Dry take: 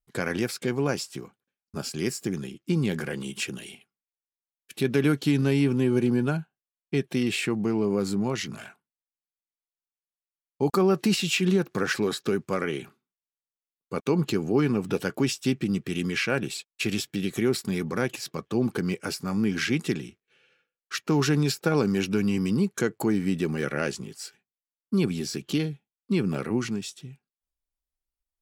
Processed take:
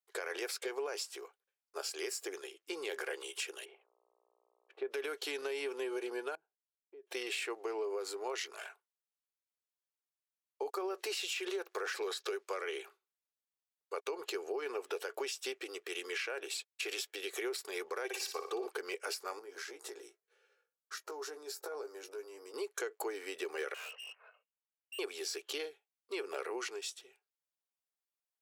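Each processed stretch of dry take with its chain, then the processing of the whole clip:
3.64–4.9 buzz 60 Hz, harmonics 21, -62 dBFS -6 dB/oct + LPF 1200 Hz
6.35–7.07 compressor 12:1, threshold -35 dBFS + band-pass 230 Hz, Q 1.1
12–12.74 steep high-pass 210 Hz 48 dB/oct + bell 4400 Hz +4.5 dB 1.8 oct
18.04–18.67 comb 2.6 ms, depth 64% + flutter echo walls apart 10.1 m, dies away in 0.46 s
19.39–22.54 compressor 8:1, threshold -31 dBFS + bell 2700 Hz -13 dB 1.1 oct + doubler 17 ms -7 dB
23.74–24.99 inverted band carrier 3000 Hz + steep high-pass 430 Hz 96 dB/oct + tube stage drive 41 dB, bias 0.35
whole clip: elliptic high-pass 410 Hz, stop band 50 dB; limiter -22 dBFS; compressor, threshold -32 dBFS; gain -2.5 dB

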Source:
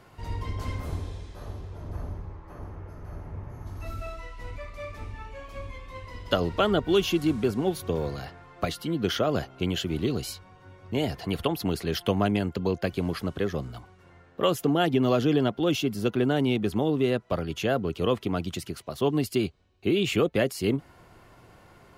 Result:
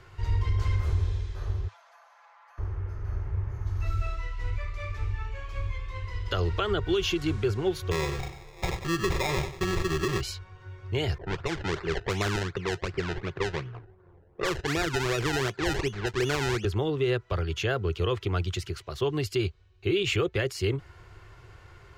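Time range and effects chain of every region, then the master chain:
1.68–2.58 steep high-pass 600 Hz 72 dB/oct + compressor 10:1, threshold -52 dBFS + comb 5.9 ms, depth 68%
7.91–10.21 comb 5.4 ms, depth 71% + sample-rate reducer 1500 Hz + lo-fi delay 95 ms, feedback 35%, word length 9-bit, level -12 dB
11.18–16.65 HPF 120 Hz 24 dB/oct + decimation with a swept rate 27× 2.7 Hz + low-pass opened by the level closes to 740 Hz, open at -20 dBFS
whole clip: EQ curve 100 Hz 0 dB, 250 Hz -24 dB, 370 Hz -6 dB, 610 Hz -15 dB, 1500 Hz -5 dB, 7000 Hz -8 dB, 10000 Hz -17 dB; limiter -25.5 dBFS; gain +8.5 dB

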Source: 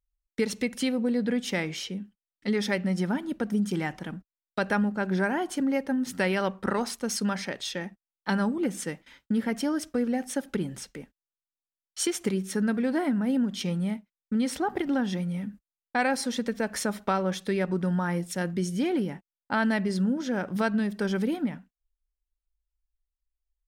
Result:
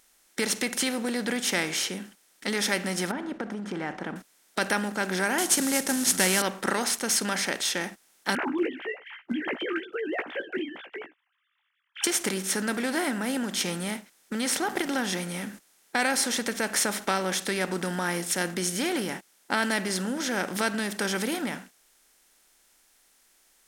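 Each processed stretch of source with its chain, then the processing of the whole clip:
3.11–4.16 LPF 1200 Hz + compressor, threshold -28 dBFS
5.38–6.42 CVSD 64 kbps + tone controls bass +9 dB, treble +13 dB
8.35–12.04 sine-wave speech + doubler 16 ms -8 dB
whole clip: per-bin compression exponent 0.6; tilt +2.5 dB/oct; gain -2.5 dB

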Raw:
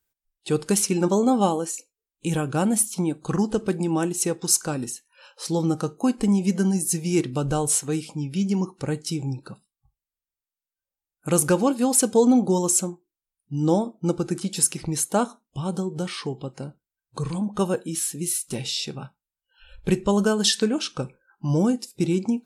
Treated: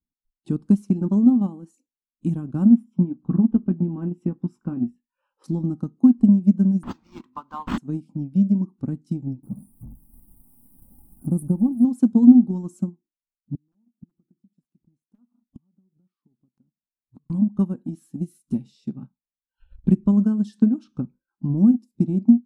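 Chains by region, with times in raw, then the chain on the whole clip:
2.69–5.44 polynomial smoothing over 25 samples + doubler 17 ms -7 dB
6.83–7.78 resonant high-pass 1000 Hz, resonance Q 8.5 + high shelf 2400 Hz +7.5 dB + decimation joined by straight lines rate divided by 4×
9.43–11.85 zero-crossing step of -30.5 dBFS + EQ curve 140 Hz 0 dB, 570 Hz -7 dB, 800 Hz -2 dB, 1800 Hz -29 dB, 6500 Hz -18 dB, 9200 Hz +10 dB
13.55–17.3 wrapped overs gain 11 dB + compressor 5:1, threshold -29 dBFS + flipped gate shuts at -32 dBFS, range -31 dB
20.82–21.58 treble ducked by the level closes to 1100 Hz, closed at -21 dBFS + high shelf 4900 Hz +9.5 dB
whole clip: EQ curve 140 Hz 0 dB, 240 Hz +11 dB, 460 Hz -16 dB, 1100 Hz -11 dB, 2000 Hz -23 dB; transient shaper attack +6 dB, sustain -6 dB; gain -4 dB

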